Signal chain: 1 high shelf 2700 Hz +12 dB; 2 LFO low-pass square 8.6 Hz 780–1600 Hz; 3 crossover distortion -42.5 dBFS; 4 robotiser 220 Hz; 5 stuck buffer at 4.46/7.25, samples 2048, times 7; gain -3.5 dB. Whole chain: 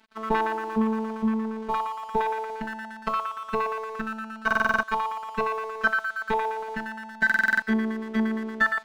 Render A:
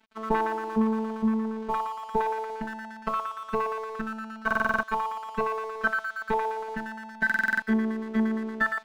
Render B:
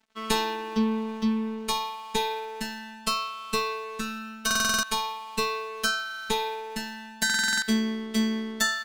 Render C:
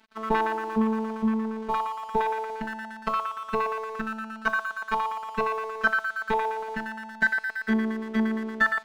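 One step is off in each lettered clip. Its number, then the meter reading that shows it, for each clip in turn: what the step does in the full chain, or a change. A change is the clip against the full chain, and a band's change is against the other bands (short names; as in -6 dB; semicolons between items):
1, 4 kHz band -4.5 dB; 2, 4 kHz band +16.5 dB; 5, 2 kHz band -1.5 dB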